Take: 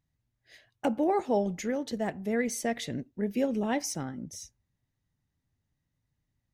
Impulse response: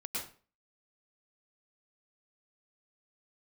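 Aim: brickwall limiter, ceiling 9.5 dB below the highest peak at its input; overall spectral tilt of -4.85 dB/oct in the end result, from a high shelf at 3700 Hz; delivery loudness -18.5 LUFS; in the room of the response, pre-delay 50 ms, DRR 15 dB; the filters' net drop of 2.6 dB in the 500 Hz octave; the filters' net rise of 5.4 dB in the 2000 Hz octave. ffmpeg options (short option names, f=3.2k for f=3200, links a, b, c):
-filter_complex "[0:a]equalizer=f=500:t=o:g=-3.5,equalizer=f=2k:t=o:g=8,highshelf=f=3.7k:g=-8,alimiter=level_in=2.5dB:limit=-24dB:level=0:latency=1,volume=-2.5dB,asplit=2[a][b];[1:a]atrim=start_sample=2205,adelay=50[c];[b][c]afir=irnorm=-1:irlink=0,volume=-17dB[d];[a][d]amix=inputs=2:normalize=0,volume=17.5dB"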